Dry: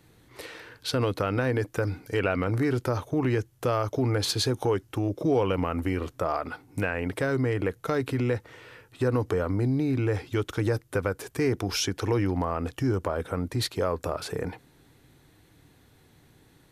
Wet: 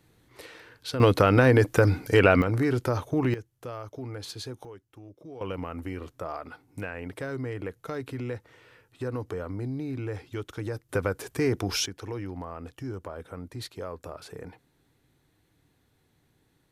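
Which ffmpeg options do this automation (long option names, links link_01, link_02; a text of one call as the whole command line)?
ffmpeg -i in.wav -af "asetnsamples=nb_out_samples=441:pad=0,asendcmd='1 volume volume 7.5dB;2.42 volume volume 0.5dB;3.34 volume volume -12dB;4.65 volume volume -20dB;5.41 volume volume -7.5dB;10.89 volume volume 0dB;11.86 volume volume -10dB',volume=-4.5dB" out.wav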